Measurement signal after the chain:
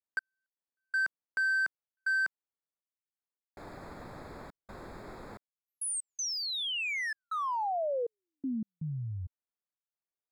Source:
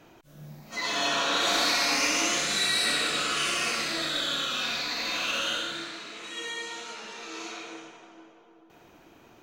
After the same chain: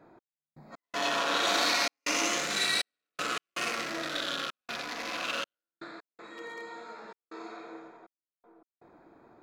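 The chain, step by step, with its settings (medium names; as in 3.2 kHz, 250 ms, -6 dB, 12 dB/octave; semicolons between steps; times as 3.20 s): local Wiener filter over 15 samples; bass shelf 140 Hz -10 dB; trance gate "x..x.xxxxx.xxx" 80 bpm -60 dB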